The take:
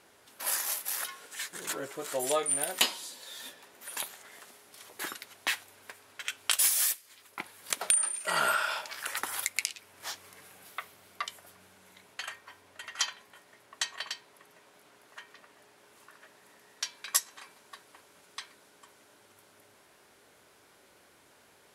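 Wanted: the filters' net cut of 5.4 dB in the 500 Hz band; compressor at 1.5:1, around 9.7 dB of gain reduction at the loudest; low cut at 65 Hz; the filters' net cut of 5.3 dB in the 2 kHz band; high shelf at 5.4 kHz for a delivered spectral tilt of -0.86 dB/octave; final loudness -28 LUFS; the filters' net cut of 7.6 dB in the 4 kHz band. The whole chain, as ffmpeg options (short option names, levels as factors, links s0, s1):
-af "highpass=65,equalizer=f=500:t=o:g=-6.5,equalizer=f=2000:t=o:g=-4.5,equalizer=f=4000:t=o:g=-6.5,highshelf=f=5400:g=-5,acompressor=threshold=0.002:ratio=1.5,volume=7.5"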